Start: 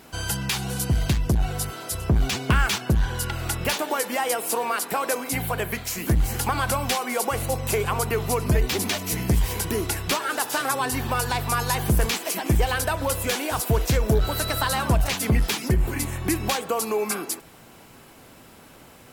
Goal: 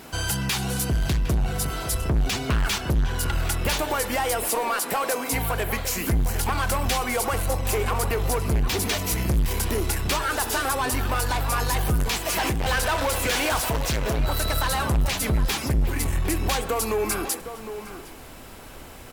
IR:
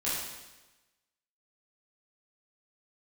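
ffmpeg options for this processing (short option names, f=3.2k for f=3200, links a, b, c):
-filter_complex "[0:a]asubboost=boost=5:cutoff=59,asplit=2[a][b];[b]acompressor=threshold=-28dB:ratio=6,volume=-2.5dB[c];[a][c]amix=inputs=2:normalize=0,asoftclip=type=tanh:threshold=-19dB,asettb=1/sr,asplit=3[d][e][f];[d]atrim=end=12.294[g];[e]atrim=start=12.29:end=14.19,asetpts=PTS-STARTPTS,afade=t=in:d=0.004:c=qsin,afade=t=out:st=1.896:d=0.004:c=qsin,asplit=2[h][i];[i]highpass=f=720:p=1,volume=22dB,asoftclip=type=tanh:threshold=-19dB[j];[h][j]amix=inputs=2:normalize=0,lowpass=f=5.8k:p=1,volume=-6dB[k];[f]atrim=start=14.186[l];[g][k]acrossfade=d=0.004:c1=hsin:c2=qsin[m];[m][l]acrossfade=d=0.004:c1=qsin:c2=hsin,asplit=2[n][o];[o]adelay=758,volume=-10dB,highshelf=f=4k:g=-17.1[p];[n][p]amix=inputs=2:normalize=0,asplit=2[q][r];[1:a]atrim=start_sample=2205[s];[r][s]afir=irnorm=-1:irlink=0,volume=-27.5dB[t];[q][t]amix=inputs=2:normalize=0"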